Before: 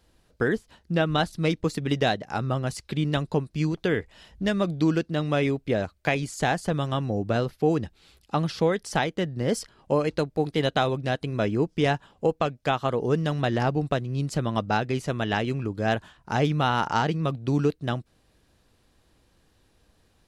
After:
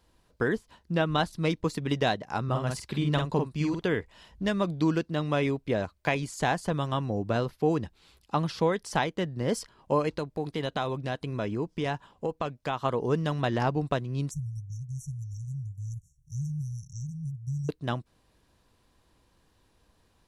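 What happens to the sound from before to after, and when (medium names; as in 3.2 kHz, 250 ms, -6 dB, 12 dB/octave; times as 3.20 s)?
2.44–3.87 s: doubling 48 ms -4 dB
10.12–12.80 s: compression 2:1, threshold -26 dBFS
14.31–17.69 s: brick-wall FIR band-stop 160–5500 Hz
whole clip: peaking EQ 1 kHz +7.5 dB 0.26 oct; trim -3 dB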